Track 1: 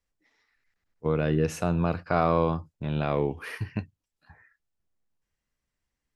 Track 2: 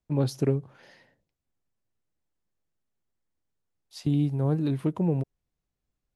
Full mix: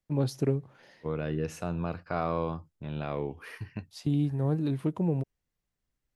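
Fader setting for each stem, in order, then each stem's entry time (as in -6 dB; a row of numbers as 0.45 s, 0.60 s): -7.0 dB, -2.5 dB; 0.00 s, 0.00 s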